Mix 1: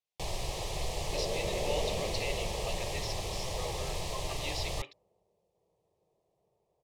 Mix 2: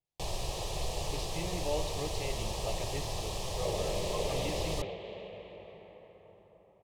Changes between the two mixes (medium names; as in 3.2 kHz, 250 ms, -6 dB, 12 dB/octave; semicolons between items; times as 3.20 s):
speech: add tilt EQ -4.5 dB/octave; first sound: add peaking EQ 2.1 kHz -8.5 dB 0.22 oct; second sound: entry +2.50 s